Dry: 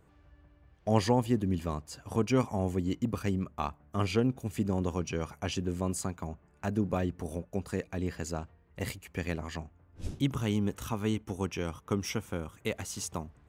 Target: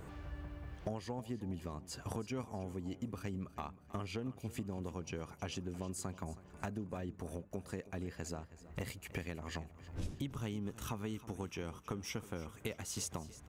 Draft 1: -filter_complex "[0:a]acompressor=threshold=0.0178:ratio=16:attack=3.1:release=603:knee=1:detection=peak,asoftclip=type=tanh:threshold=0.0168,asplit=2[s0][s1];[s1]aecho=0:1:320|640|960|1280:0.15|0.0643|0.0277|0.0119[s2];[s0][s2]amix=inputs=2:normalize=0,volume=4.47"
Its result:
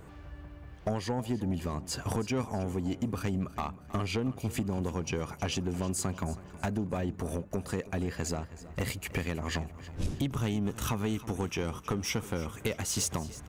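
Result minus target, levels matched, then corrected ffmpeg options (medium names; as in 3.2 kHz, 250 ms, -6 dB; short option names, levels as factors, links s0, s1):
compression: peak gain reduction -11.5 dB
-filter_complex "[0:a]acompressor=threshold=0.00447:ratio=16:attack=3.1:release=603:knee=1:detection=peak,asoftclip=type=tanh:threshold=0.0168,asplit=2[s0][s1];[s1]aecho=0:1:320|640|960|1280:0.15|0.0643|0.0277|0.0119[s2];[s0][s2]amix=inputs=2:normalize=0,volume=4.47"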